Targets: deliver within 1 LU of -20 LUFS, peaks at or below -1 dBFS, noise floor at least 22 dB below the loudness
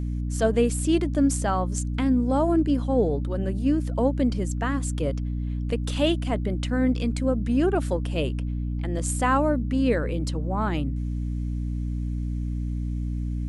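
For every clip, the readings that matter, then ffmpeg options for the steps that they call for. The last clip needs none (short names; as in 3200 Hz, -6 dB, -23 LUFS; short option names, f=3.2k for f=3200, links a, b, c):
hum 60 Hz; harmonics up to 300 Hz; hum level -25 dBFS; loudness -25.5 LUFS; peak -9.0 dBFS; loudness target -20.0 LUFS
-> -af "bandreject=f=60:t=h:w=6,bandreject=f=120:t=h:w=6,bandreject=f=180:t=h:w=6,bandreject=f=240:t=h:w=6,bandreject=f=300:t=h:w=6"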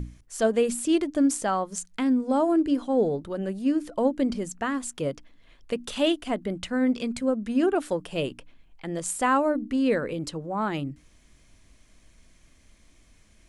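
hum none; loudness -26.5 LUFS; peak -10.5 dBFS; loudness target -20.0 LUFS
-> -af "volume=6.5dB"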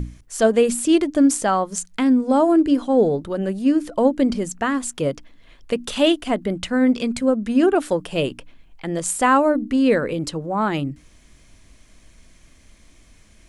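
loudness -20.0 LUFS; peak -4.0 dBFS; noise floor -52 dBFS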